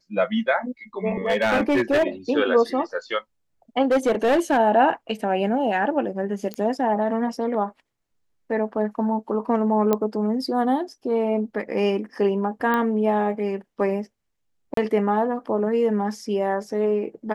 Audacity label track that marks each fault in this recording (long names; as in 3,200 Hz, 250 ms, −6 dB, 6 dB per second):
1.260000	2.040000	clipping −15.5 dBFS
3.820000	4.580000	clipping −15 dBFS
6.540000	6.540000	click −16 dBFS
9.930000	9.930000	click −8 dBFS
12.740000	12.740000	click −12 dBFS
14.740000	14.770000	drop-out 33 ms